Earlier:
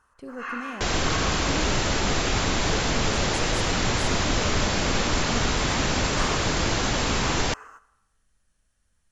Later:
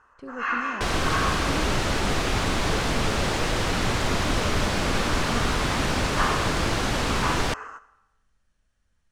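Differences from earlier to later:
first sound +7.5 dB
second sound: remove linear-phase brick-wall low-pass 7,600 Hz
master: add high-frequency loss of the air 77 metres

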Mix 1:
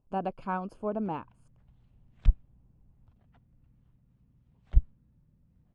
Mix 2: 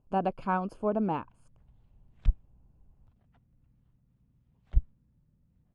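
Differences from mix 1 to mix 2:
speech +3.5 dB
background −3.0 dB

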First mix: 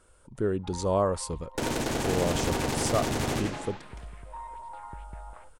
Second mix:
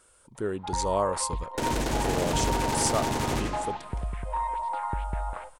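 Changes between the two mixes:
speech: add spectral tilt +2 dB per octave
first sound +11.5 dB

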